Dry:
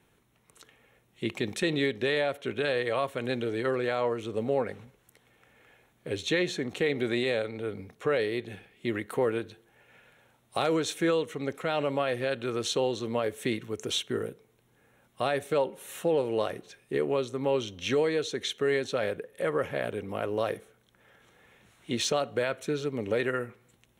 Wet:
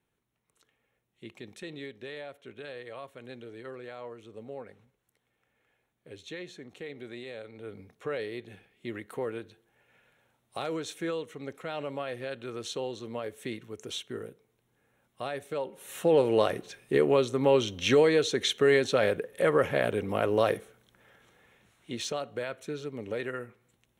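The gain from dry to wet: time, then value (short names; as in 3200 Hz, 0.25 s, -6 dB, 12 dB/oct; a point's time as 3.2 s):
7.32 s -14 dB
7.74 s -7 dB
15.6 s -7 dB
16.18 s +4.5 dB
20.5 s +4.5 dB
21.92 s -6 dB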